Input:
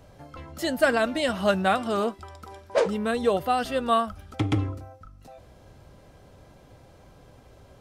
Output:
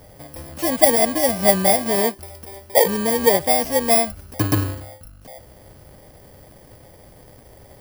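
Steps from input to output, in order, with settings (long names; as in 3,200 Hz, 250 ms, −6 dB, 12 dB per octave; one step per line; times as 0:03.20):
samples in bit-reversed order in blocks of 32 samples
parametric band 600 Hz +6 dB 1.1 octaves
level +4.5 dB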